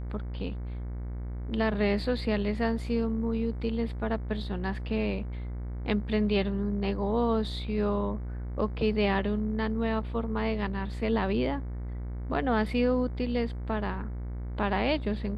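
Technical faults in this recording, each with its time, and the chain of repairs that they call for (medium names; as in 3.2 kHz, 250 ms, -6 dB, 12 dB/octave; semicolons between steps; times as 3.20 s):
buzz 60 Hz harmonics 38 -35 dBFS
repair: de-hum 60 Hz, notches 38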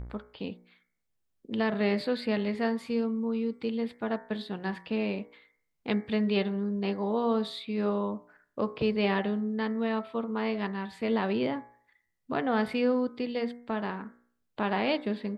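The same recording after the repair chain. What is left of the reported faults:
nothing left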